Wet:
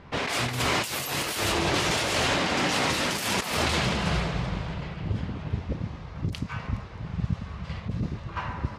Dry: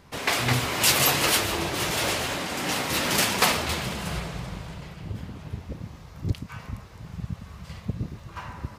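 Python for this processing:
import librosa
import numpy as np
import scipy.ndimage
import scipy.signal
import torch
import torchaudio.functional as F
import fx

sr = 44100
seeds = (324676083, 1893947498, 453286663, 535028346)

y = fx.env_lowpass(x, sr, base_hz=2900.0, full_db=-18.5)
y = fx.over_compress(y, sr, threshold_db=-29.0, ratio=-1.0)
y = F.gain(torch.from_numpy(y), 2.5).numpy()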